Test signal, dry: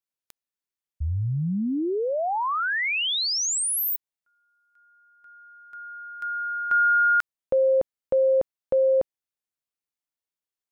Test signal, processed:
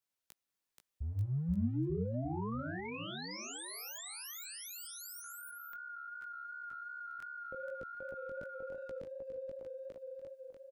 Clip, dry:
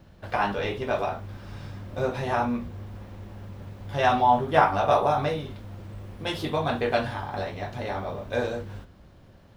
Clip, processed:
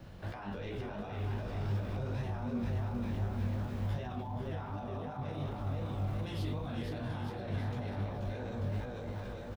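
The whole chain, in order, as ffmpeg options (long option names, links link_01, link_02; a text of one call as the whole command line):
ffmpeg -i in.wav -filter_complex "[0:a]areverse,acompressor=threshold=-35dB:ratio=6:attack=0.37:release=33:detection=rms,areverse,aecho=1:1:480|888|1235|1530|1780:0.631|0.398|0.251|0.158|0.1,flanger=delay=16:depth=6.1:speed=2.7,acrossover=split=330[link_01][link_02];[link_02]acompressor=threshold=-51dB:ratio=6:attack=6.5:release=46:knee=2.83:detection=peak[link_03];[link_01][link_03]amix=inputs=2:normalize=0,volume=5dB" out.wav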